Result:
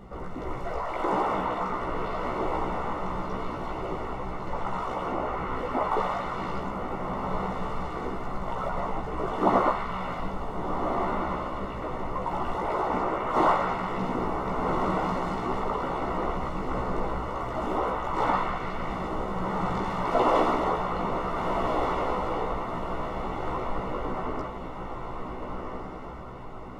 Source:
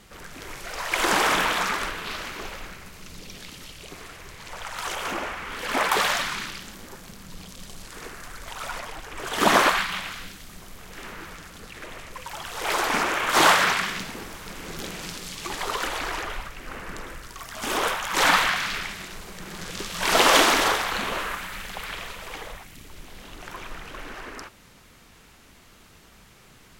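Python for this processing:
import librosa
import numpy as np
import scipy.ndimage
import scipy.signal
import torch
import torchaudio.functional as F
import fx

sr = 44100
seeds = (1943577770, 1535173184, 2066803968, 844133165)

p1 = fx.over_compress(x, sr, threshold_db=-35.0, ratio=-1.0)
p2 = x + (p1 * 10.0 ** (1.0 / 20.0))
p3 = scipy.signal.savgol_filter(p2, 65, 4, mode='constant')
p4 = fx.doubler(p3, sr, ms=16.0, db=-3)
p5 = fx.echo_diffused(p4, sr, ms=1475, feedback_pct=47, wet_db=-4)
y = p5 * 10.0 ** (-3.5 / 20.0)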